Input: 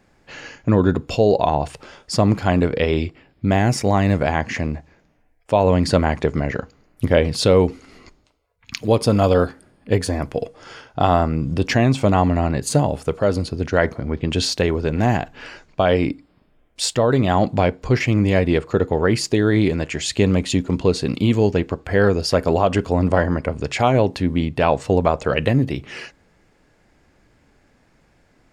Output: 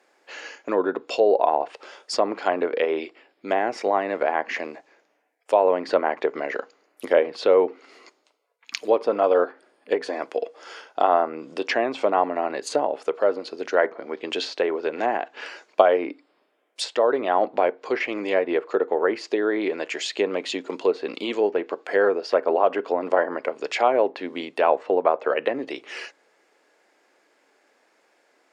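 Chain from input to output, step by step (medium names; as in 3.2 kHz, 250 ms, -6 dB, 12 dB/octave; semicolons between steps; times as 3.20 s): high-pass 370 Hz 24 dB/octave; low-pass that closes with the level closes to 1.8 kHz, closed at -17.5 dBFS; 15.33–15.89 s: transient shaper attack +6 dB, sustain +2 dB; trim -1 dB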